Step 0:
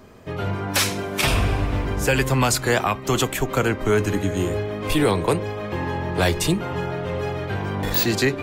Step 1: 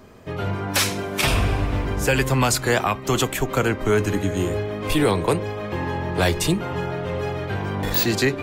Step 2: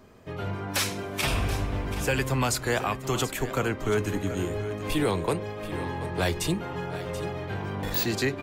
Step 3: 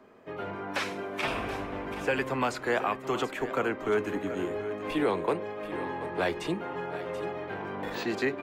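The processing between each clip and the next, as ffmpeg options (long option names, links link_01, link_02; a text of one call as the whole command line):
ffmpeg -i in.wav -af anull out.wav
ffmpeg -i in.wav -af "aecho=1:1:732:0.224,volume=-6.5dB" out.wav
ffmpeg -i in.wav -filter_complex "[0:a]acrossover=split=7700[link_01][link_02];[link_02]acompressor=threshold=-44dB:ratio=4:attack=1:release=60[link_03];[link_01][link_03]amix=inputs=2:normalize=0,acrossover=split=210 2800:gain=0.126 1 0.224[link_04][link_05][link_06];[link_04][link_05][link_06]amix=inputs=3:normalize=0" out.wav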